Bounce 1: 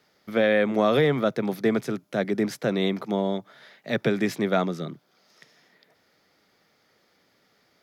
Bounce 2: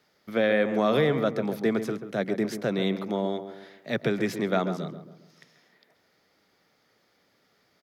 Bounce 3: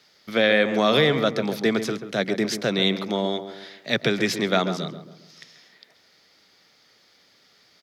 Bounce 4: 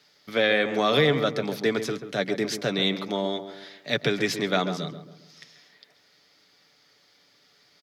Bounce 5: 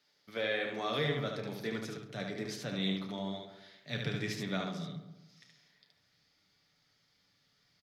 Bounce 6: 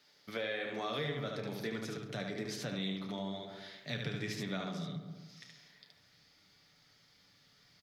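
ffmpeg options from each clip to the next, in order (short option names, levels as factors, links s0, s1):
-filter_complex "[0:a]asplit=2[s0][s1];[s1]adelay=136,lowpass=f=1400:p=1,volume=0.355,asplit=2[s2][s3];[s3]adelay=136,lowpass=f=1400:p=1,volume=0.45,asplit=2[s4][s5];[s5]adelay=136,lowpass=f=1400:p=1,volume=0.45,asplit=2[s6][s7];[s7]adelay=136,lowpass=f=1400:p=1,volume=0.45,asplit=2[s8][s9];[s9]adelay=136,lowpass=f=1400:p=1,volume=0.45[s10];[s0][s2][s4][s6][s8][s10]amix=inputs=6:normalize=0,volume=0.75"
-af "equalizer=f=4400:t=o:w=2.1:g=11.5,volume=1.33"
-af "aecho=1:1:6.9:0.37,volume=0.708"
-af "flanger=delay=3.3:depth=8.1:regen=-67:speed=1.1:shape=sinusoidal,asubboost=boost=6:cutoff=150,aecho=1:1:31|73:0.316|0.631,volume=0.355"
-af "acompressor=threshold=0.00501:ratio=2.5,volume=2.11"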